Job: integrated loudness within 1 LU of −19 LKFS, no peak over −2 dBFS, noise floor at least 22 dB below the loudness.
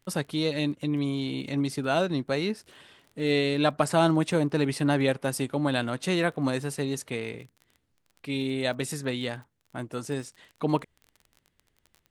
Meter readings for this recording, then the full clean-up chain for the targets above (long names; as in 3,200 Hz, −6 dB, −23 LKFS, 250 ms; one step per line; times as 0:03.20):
crackle rate 23 per second; integrated loudness −28.0 LKFS; sample peak −8.5 dBFS; target loudness −19.0 LKFS
→ click removal
level +9 dB
brickwall limiter −2 dBFS